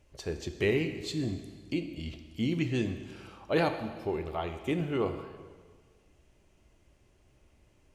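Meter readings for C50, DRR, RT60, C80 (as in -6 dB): 8.5 dB, 7.0 dB, 1.6 s, 10.0 dB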